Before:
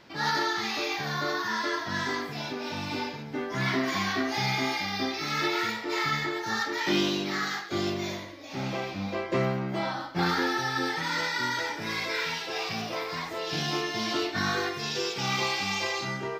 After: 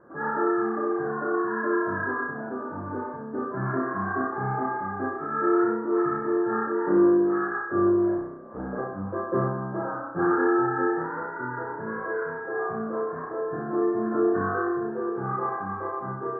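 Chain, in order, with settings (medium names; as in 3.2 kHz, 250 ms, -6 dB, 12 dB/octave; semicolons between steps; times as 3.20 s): 8.17–8.78 s: ring modulator 61 Hz; rippled Chebyshev low-pass 1.7 kHz, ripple 9 dB; flutter echo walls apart 5.4 m, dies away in 0.64 s; trim +5 dB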